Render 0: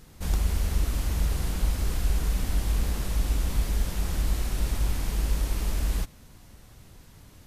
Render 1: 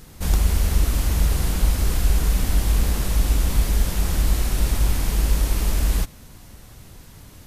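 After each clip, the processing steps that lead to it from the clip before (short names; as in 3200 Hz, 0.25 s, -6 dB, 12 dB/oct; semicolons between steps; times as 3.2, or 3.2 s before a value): high shelf 9000 Hz +4 dB; gain +6.5 dB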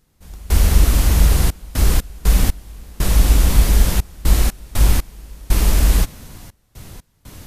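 step gate "..xxxx.x.x" 60 bpm -24 dB; gain +6.5 dB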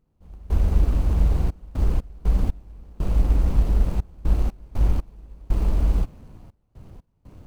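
median filter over 25 samples; gain -6 dB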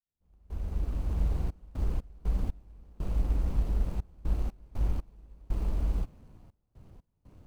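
opening faded in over 1.24 s; gain -9 dB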